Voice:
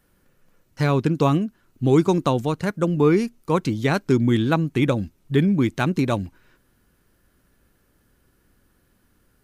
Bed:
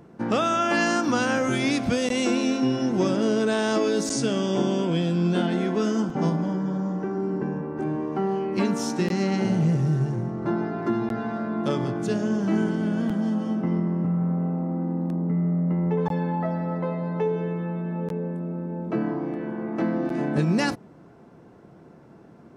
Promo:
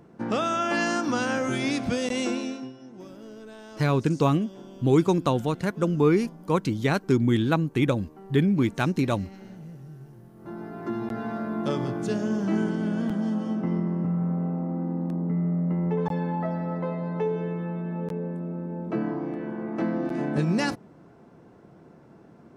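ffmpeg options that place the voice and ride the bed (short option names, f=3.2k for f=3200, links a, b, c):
-filter_complex "[0:a]adelay=3000,volume=-3dB[a];[1:a]volume=16dB,afade=t=out:st=2.2:d=0.53:silence=0.125893,afade=t=in:st=10.33:d=0.99:silence=0.112202[b];[a][b]amix=inputs=2:normalize=0"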